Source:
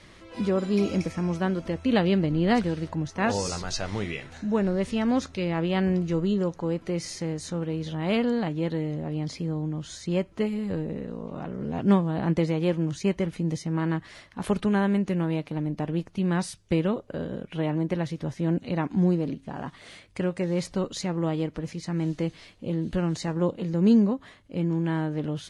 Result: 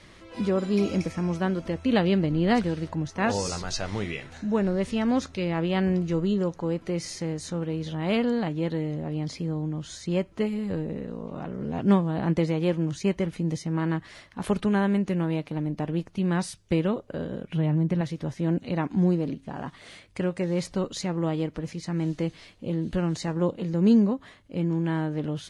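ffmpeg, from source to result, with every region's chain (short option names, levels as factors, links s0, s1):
-filter_complex "[0:a]asettb=1/sr,asplit=3[s0][s1][s2];[s0]atrim=end=17.494[s3];[s1]atrim=start=17.49:end=18.01,asetpts=PTS-STARTPTS,afade=t=in:d=0.004:c=qsin,afade=t=out:st=0.516:d=0.004:c=qsin,equalizer=f=140:w=1.1:g=11.5,acompressor=threshold=0.0447:ratio=1.5:attack=3.2:release=140:knee=1:detection=peak[s4];[s2]atrim=start=18.006[s5];[s3][s4]acrossfade=d=0.004:c1=hsin:c2=qsin[s6];[s6][s5]acrossfade=d=0.004:c1=qsin:c2=hsin"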